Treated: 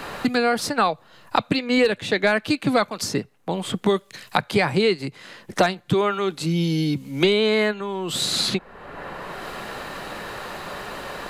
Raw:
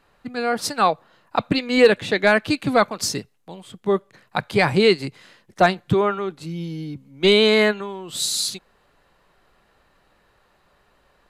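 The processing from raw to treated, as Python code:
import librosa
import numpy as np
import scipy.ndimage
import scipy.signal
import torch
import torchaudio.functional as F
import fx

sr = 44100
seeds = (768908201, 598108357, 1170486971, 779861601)

y = fx.band_squash(x, sr, depth_pct=100)
y = y * librosa.db_to_amplitude(-2.0)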